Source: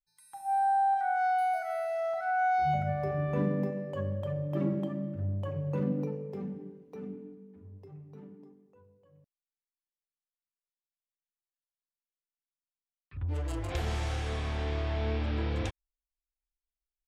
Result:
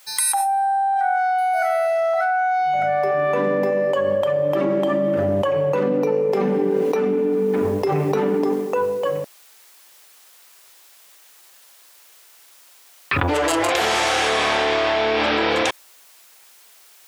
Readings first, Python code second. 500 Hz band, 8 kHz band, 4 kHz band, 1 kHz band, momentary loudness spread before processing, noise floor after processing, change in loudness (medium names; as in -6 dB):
+18.0 dB, no reading, +21.0 dB, +10.0 dB, 21 LU, -50 dBFS, +11.5 dB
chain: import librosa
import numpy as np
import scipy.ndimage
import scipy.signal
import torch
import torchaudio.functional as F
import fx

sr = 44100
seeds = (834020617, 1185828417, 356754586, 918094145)

y = scipy.signal.sosfilt(scipy.signal.butter(2, 500.0, 'highpass', fs=sr, output='sos'), x)
y = fx.env_flatten(y, sr, amount_pct=100)
y = y * 10.0 ** (6.5 / 20.0)